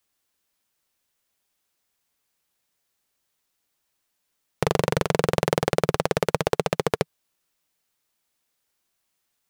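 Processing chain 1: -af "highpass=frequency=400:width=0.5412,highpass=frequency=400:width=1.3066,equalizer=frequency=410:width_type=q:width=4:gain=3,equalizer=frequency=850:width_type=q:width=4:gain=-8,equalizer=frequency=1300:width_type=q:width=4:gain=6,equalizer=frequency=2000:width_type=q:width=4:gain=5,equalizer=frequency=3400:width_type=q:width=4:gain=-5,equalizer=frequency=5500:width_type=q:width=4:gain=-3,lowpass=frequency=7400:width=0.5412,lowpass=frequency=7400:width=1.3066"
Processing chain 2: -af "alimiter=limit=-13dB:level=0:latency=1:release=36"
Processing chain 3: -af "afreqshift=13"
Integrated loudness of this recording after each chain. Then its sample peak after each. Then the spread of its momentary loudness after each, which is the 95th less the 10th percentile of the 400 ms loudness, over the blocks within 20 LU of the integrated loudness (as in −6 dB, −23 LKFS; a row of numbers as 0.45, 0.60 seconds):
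−26.0, −33.5, −25.0 LKFS; −5.5, −13.0, −5.0 dBFS; 4, 5, 4 LU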